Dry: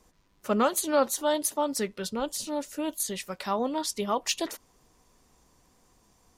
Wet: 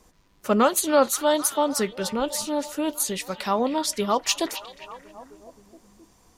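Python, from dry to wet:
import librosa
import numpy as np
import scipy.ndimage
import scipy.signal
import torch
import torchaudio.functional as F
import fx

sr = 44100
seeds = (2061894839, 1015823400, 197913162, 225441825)

y = fx.echo_stepped(x, sr, ms=264, hz=3100.0, octaves=-0.7, feedback_pct=70, wet_db=-9.5)
y = y * librosa.db_to_amplitude(5.0)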